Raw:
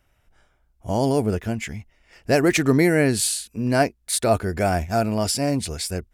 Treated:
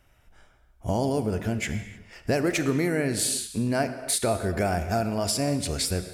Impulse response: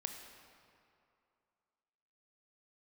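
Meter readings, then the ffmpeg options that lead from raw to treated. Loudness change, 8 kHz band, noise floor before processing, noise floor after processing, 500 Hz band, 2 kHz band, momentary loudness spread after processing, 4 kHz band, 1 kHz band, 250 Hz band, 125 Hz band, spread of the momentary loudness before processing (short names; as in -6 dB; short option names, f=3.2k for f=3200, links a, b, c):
-4.5 dB, -2.5 dB, -65 dBFS, -60 dBFS, -5.5 dB, -5.5 dB, 6 LU, -2.5 dB, -5.0 dB, -5.0 dB, -4.0 dB, 11 LU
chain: -filter_complex "[0:a]acompressor=threshold=-27dB:ratio=4,asplit=2[a][b];[1:a]atrim=start_sample=2205,afade=t=out:st=0.28:d=0.01,atrim=end_sample=12789,asetrate=32193,aresample=44100[c];[b][c]afir=irnorm=-1:irlink=0,volume=4.5dB[d];[a][d]amix=inputs=2:normalize=0,volume=-4.5dB"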